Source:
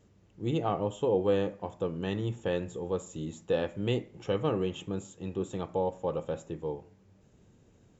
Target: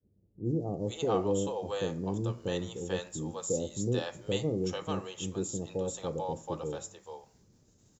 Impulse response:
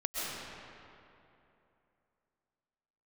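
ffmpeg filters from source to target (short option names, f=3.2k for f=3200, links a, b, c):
-filter_complex "[0:a]agate=range=-33dB:threshold=-56dB:ratio=3:detection=peak,highshelf=f=3.7k:t=q:w=1.5:g=10,acrossover=split=580[a][b];[b]adelay=440[c];[a][c]amix=inputs=2:normalize=0"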